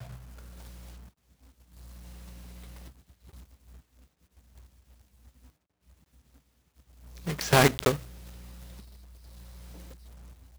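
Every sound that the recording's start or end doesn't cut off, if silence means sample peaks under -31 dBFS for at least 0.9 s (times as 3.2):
7.27–7.95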